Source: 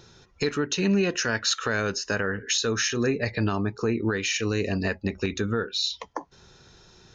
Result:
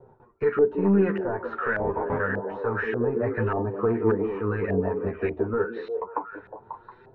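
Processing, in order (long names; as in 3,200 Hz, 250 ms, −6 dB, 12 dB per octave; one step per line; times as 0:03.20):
0:01.79–0:02.20: sample-rate reduction 1,400 Hz, jitter 0%
mid-hump overdrive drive 14 dB, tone 1,200 Hz, clips at −13 dBFS
bass and treble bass +6 dB, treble −13 dB
tuned comb filter 100 Hz, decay 0.17 s, harmonics all, mix 40%
echo through a band-pass that steps 180 ms, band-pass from 320 Hz, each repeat 0.7 octaves, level −3 dB
flanger 0.28 Hz, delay 7.5 ms, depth 5.5 ms, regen +5%
noise gate with hold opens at −47 dBFS
hollow resonant body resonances 440/920 Hz, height 7 dB
auto-filter low-pass saw up 1.7 Hz 640–2,000 Hz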